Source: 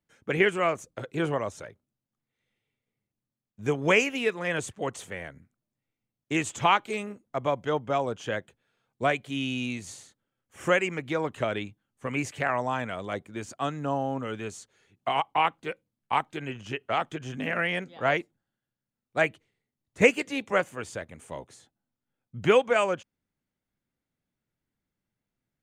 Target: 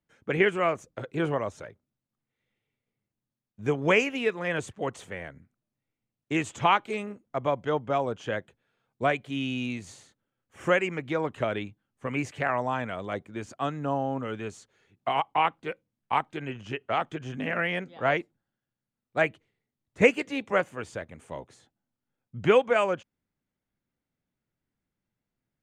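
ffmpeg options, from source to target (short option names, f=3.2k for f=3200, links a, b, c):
-af "aemphasis=mode=reproduction:type=cd"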